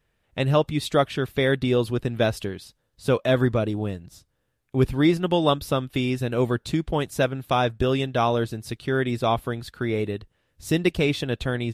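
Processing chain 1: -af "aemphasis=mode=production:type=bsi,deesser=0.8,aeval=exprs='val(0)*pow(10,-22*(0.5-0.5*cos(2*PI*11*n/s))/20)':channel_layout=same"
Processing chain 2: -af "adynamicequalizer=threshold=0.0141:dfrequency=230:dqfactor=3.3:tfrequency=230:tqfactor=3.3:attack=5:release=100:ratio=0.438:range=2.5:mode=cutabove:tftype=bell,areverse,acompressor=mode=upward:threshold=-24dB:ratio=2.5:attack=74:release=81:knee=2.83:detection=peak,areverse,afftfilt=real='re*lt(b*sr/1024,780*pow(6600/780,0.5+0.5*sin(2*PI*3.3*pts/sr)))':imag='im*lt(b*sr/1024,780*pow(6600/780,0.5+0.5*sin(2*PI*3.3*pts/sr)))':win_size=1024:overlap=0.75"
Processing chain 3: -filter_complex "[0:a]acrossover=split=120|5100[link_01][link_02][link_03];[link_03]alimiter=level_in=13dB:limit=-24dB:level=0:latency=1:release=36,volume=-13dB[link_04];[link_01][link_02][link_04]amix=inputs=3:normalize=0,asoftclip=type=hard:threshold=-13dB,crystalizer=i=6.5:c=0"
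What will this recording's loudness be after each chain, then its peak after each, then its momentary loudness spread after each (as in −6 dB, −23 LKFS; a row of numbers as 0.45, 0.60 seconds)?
−33.5, −24.0, −21.5 LKFS; −11.5, −7.5, −3.5 dBFS; 10, 8, 10 LU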